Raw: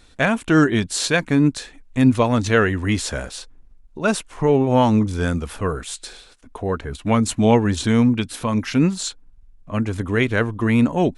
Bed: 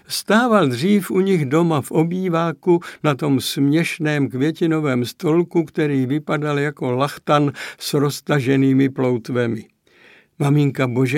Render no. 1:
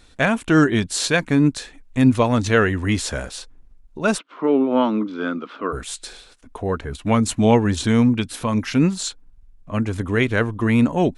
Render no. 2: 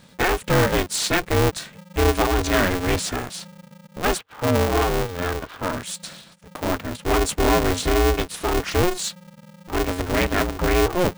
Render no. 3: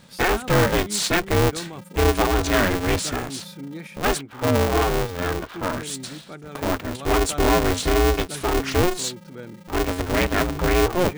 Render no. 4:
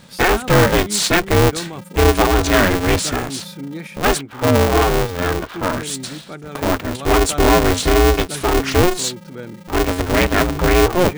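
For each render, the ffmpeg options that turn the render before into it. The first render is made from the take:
-filter_complex "[0:a]asplit=3[s0][s1][s2];[s0]afade=t=out:st=4.17:d=0.02[s3];[s1]highpass=f=250:w=0.5412,highpass=f=250:w=1.3066,equalizer=f=280:t=q:w=4:g=5,equalizer=f=460:t=q:w=4:g=-3,equalizer=f=800:t=q:w=4:g=-8,equalizer=f=1300:t=q:w=4:g=7,equalizer=f=1800:t=q:w=4:g=-7,equalizer=f=2600:t=q:w=4:g=-4,lowpass=f=3600:w=0.5412,lowpass=f=3600:w=1.3066,afade=t=in:st=4.17:d=0.02,afade=t=out:st=5.72:d=0.02[s4];[s2]afade=t=in:st=5.72:d=0.02[s5];[s3][s4][s5]amix=inputs=3:normalize=0"
-af "asoftclip=type=tanh:threshold=0.251,aeval=exprs='val(0)*sgn(sin(2*PI*180*n/s))':c=same"
-filter_complex "[1:a]volume=0.112[s0];[0:a][s0]amix=inputs=2:normalize=0"
-af "volume=1.88"

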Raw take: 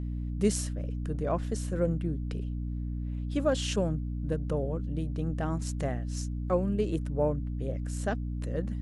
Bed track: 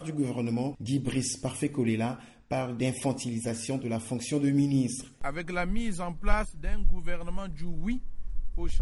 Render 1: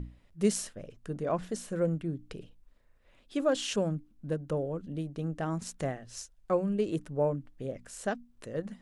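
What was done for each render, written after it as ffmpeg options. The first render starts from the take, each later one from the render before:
-af "bandreject=f=60:t=h:w=6,bandreject=f=120:t=h:w=6,bandreject=f=180:t=h:w=6,bandreject=f=240:t=h:w=6,bandreject=f=300:t=h:w=6"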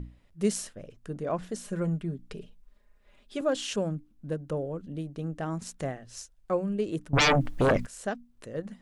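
-filter_complex "[0:a]asettb=1/sr,asplit=3[s0][s1][s2];[s0]atrim=end=1.644[s3];[s1]atrim=start=1.64:end=3.41,asetpts=PTS-STARTPTS,afade=t=in:d=0.004:c=qsin,afade=t=out:st=1.766:d=0.004:c=qsin,aecho=1:1:4.9:0.65,atrim=end_sample=78057[s4];[s2]atrim=start=3.406[s5];[s3][s4]acrossfade=d=0.004:c1=hsin:c2=qsin[s6];[s6][s5]acrossfade=d=0.004:c1=qsin:c2=hsin,asettb=1/sr,asplit=3[s7][s8][s9];[s7]atrim=end=7.134[s10];[s8]atrim=start=7.13:end=7.86,asetpts=PTS-STARTPTS,afade=t=in:d=0.004:c=qsin,afade=t=out:st=0.726:d=0.004:c=qsin,aeval=exprs='0.126*sin(PI/2*7.08*val(0)/0.126)':c=same[s11];[s9]atrim=start=7.856[s12];[s10][s11]acrossfade=d=0.004:c1=hsin:c2=qsin[s13];[s13][s12]acrossfade=d=0.004:c1=qsin:c2=hsin"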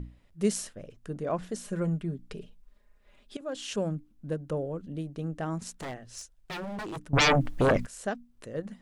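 -filter_complex "[0:a]asettb=1/sr,asplit=3[s0][s1][s2];[s0]atrim=end=5.764[s3];[s1]atrim=start=5.76:end=7.08,asetpts=PTS-STARTPTS,afade=t=in:d=0.004:c=qsin,afade=t=out:st=1.316:d=0.004:c=qsin,aeval=exprs='0.0266*(abs(mod(val(0)/0.0266+3,4)-2)-1)':c=same[s4];[s2]atrim=start=7.076[s5];[s3][s4]acrossfade=d=0.004:c1=hsin:c2=qsin[s6];[s6][s5]acrossfade=d=0.004:c1=qsin:c2=hsin,asplit=2[s7][s8];[s7]atrim=end=3.37,asetpts=PTS-STARTPTS,afade=t=out:st=3.366:d=0.004:c=hsin:silence=0.133352[s9];[s8]atrim=start=3.37,asetpts=PTS-STARTPTS,afade=t=in:d=0.48:silence=0.133352[s10];[s9][s10]concat=n=2:v=0:a=1"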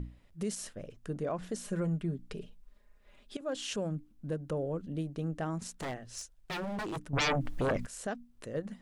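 -af "alimiter=level_in=1.19:limit=0.0631:level=0:latency=1:release=136,volume=0.841"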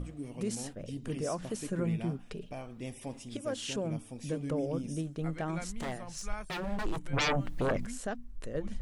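-filter_complex "[1:a]volume=0.237[s0];[0:a][s0]amix=inputs=2:normalize=0"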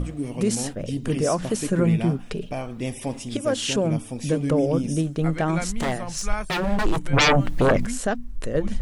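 -af "volume=3.98"

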